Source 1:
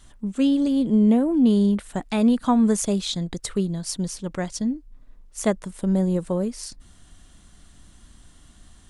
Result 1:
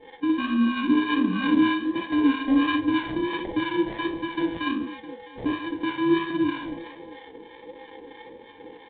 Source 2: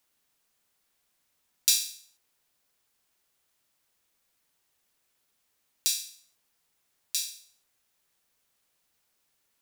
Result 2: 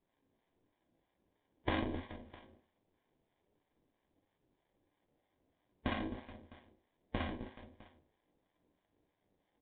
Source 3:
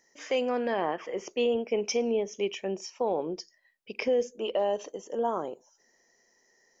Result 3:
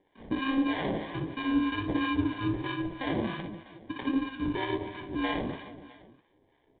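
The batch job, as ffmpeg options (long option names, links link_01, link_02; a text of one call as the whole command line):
ffmpeg -i in.wav -filter_complex "[0:a]afftfilt=real='real(if(between(b,1,1008),(2*floor((b-1)/24)+1)*24-b,b),0)':imag='imag(if(between(b,1,1008),(2*floor((b-1)/24)+1)*24-b,b),0)*if(between(b,1,1008),-1,1)':win_size=2048:overlap=0.75,highpass=120,equalizer=frequency=300:width_type=o:width=0.85:gain=14,acompressor=threshold=-25dB:ratio=2.5,aresample=16000,acrusher=samples=12:mix=1:aa=0.000001,aresample=44100,asoftclip=type=hard:threshold=-17dB,asplit=2[link_01][link_02];[link_02]aecho=0:1:60|144|261.6|426.2|656.7:0.631|0.398|0.251|0.158|0.1[link_03];[link_01][link_03]amix=inputs=2:normalize=0,flanger=delay=9.6:depth=9.4:regen=58:speed=1.4:shape=sinusoidal,acrossover=split=710[link_04][link_05];[link_04]aeval=exprs='val(0)*(1-0.7/2+0.7/2*cos(2*PI*3.1*n/s))':channel_layout=same[link_06];[link_05]aeval=exprs='val(0)*(1-0.7/2-0.7/2*cos(2*PI*3.1*n/s))':channel_layout=same[link_07];[link_06][link_07]amix=inputs=2:normalize=0,volume=4dB" -ar 8000 -c:a adpcm_ima_wav out.wav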